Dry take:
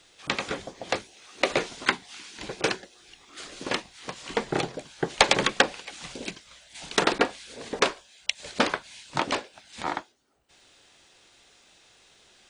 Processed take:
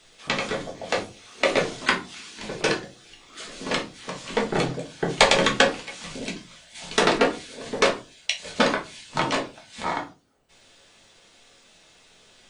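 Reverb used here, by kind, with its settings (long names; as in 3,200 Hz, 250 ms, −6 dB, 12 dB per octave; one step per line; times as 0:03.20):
rectangular room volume 130 cubic metres, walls furnished, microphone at 1.5 metres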